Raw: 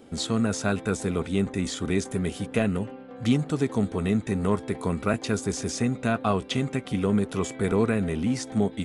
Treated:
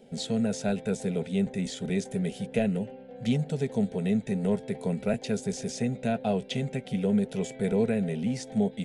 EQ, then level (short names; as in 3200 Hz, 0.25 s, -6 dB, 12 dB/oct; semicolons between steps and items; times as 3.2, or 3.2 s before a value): high shelf 4200 Hz -7.5 dB; fixed phaser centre 310 Hz, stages 6; 0.0 dB